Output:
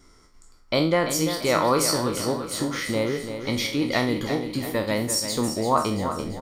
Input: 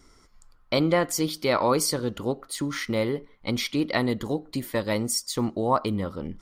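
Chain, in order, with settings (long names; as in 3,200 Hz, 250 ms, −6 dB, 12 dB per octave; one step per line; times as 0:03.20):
peak hold with a decay on every bin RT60 0.41 s
repeating echo 340 ms, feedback 52%, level −9 dB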